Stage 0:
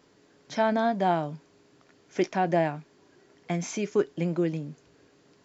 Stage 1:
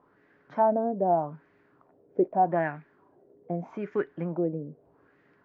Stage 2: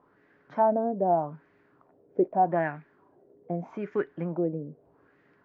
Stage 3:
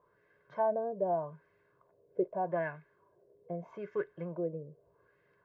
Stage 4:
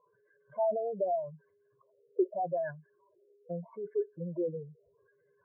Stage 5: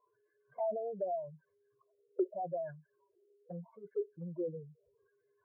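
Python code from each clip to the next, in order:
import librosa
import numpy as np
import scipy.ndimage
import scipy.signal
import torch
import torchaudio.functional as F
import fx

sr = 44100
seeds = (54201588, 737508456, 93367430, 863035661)

y1 = fx.filter_lfo_lowpass(x, sr, shape='sine', hz=0.81, low_hz=470.0, high_hz=1900.0, q=3.2)
y1 = fx.dynamic_eq(y1, sr, hz=5600.0, q=1.4, threshold_db=-54.0, ratio=4.0, max_db=-5)
y1 = y1 * 10.0 ** (-4.5 / 20.0)
y2 = y1
y3 = y2 + 0.82 * np.pad(y2, (int(1.9 * sr / 1000.0), 0))[:len(y2)]
y3 = y3 * 10.0 ** (-8.5 / 20.0)
y4 = fx.spec_expand(y3, sr, power=2.9)
y4 = fx.dynamic_eq(y4, sr, hz=280.0, q=1.2, threshold_db=-51.0, ratio=4.0, max_db=6)
y5 = fx.env_flanger(y4, sr, rest_ms=2.9, full_db=-29.5)
y5 = y5 * 10.0 ** (-3.5 / 20.0)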